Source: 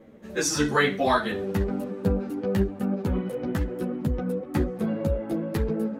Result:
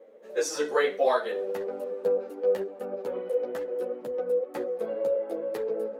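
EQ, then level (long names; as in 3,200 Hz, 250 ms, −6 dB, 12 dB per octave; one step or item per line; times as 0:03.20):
high-pass with resonance 500 Hz, resonance Q 4.9
−7.5 dB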